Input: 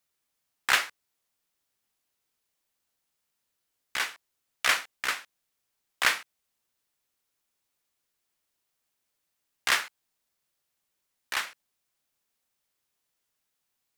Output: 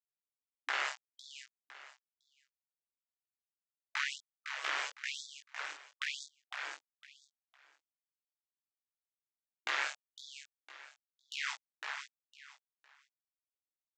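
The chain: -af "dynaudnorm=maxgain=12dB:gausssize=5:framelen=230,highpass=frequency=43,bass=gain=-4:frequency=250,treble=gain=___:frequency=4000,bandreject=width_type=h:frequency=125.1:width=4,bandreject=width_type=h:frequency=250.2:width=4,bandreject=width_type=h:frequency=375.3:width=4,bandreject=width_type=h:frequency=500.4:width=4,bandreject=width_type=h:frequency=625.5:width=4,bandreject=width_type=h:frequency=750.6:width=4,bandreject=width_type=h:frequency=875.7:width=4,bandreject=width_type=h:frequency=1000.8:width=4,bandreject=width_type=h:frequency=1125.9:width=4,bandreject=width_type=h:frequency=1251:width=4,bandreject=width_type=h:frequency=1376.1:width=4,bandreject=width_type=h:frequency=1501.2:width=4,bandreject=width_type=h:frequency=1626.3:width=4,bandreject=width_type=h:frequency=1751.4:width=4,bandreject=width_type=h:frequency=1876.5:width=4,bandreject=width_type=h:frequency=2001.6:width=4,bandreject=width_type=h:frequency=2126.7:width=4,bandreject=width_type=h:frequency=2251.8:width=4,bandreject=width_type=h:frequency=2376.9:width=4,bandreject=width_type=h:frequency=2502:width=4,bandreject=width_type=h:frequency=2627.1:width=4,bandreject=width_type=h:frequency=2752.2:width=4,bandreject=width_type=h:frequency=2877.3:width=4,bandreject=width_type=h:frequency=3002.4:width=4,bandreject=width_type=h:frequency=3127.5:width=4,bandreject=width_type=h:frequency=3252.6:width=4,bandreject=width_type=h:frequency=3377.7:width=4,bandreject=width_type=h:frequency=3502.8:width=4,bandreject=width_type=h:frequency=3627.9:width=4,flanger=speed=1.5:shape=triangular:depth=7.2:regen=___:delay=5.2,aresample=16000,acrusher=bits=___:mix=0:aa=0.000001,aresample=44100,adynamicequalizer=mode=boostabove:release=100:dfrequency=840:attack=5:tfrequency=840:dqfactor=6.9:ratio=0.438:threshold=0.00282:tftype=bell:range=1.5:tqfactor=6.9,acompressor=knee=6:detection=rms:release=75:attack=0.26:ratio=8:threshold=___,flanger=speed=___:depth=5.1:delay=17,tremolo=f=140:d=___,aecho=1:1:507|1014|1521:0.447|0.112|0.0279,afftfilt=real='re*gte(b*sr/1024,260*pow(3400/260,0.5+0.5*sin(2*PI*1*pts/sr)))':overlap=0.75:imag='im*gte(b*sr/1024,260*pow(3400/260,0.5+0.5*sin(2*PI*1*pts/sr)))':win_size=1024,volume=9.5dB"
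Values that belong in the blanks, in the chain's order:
-10, 83, 6, -29dB, 0.37, 0.824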